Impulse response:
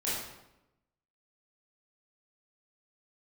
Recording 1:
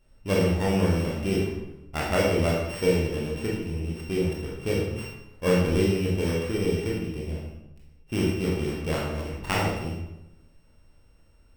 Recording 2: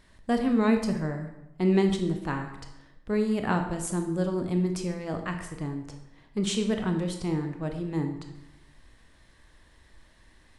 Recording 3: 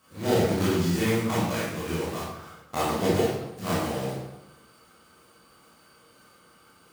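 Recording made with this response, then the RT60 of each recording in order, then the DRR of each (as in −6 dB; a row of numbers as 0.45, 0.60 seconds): 3; 0.90, 0.90, 0.90 seconds; −4.0, 5.0, −9.5 decibels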